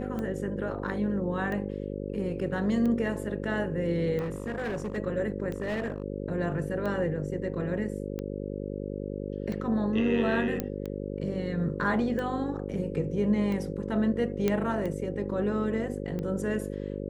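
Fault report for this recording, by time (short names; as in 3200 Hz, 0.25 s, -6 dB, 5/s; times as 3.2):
buzz 50 Hz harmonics 11 -35 dBFS
tick 45 rpm -23 dBFS
4.18–4.98 clipped -28.5 dBFS
5.56–6.04 clipped -27 dBFS
10.6 pop -15 dBFS
14.48 pop -13 dBFS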